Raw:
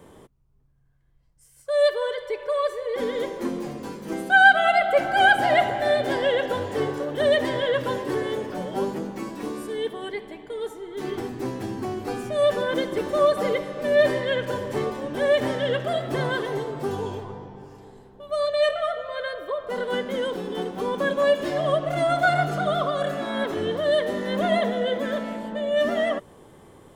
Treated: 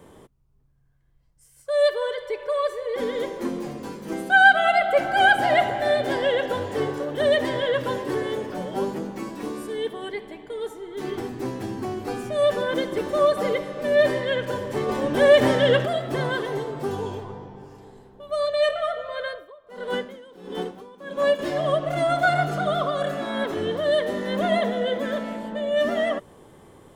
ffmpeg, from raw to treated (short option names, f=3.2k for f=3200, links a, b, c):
-filter_complex "[0:a]asplit=3[a][b][c];[a]afade=t=out:st=14.88:d=0.02[d];[b]acontrast=65,afade=t=in:st=14.88:d=0.02,afade=t=out:st=15.85:d=0.02[e];[c]afade=t=in:st=15.85:d=0.02[f];[d][e][f]amix=inputs=3:normalize=0,asettb=1/sr,asplit=3[g][h][i];[g]atrim=end=19.274[j];[h]atrim=start=19.27:end=21.39,asetpts=PTS-STARTPTS,afade=t=in:d=0.004:c=qsin,afade=t=out:st=2.116:d=0.004:c=qsin,aeval=exprs='val(0)*pow(10,-20*(0.5-0.5*cos(2*PI*1.5*n/s))/20)':c=same[k];[i]atrim=start=21.386[l];[j][k]acrossfade=d=0.004:c1=hsin:c2=qsin[m];[m][l]acrossfade=d=0.004:c1=qsin:c2=hsin"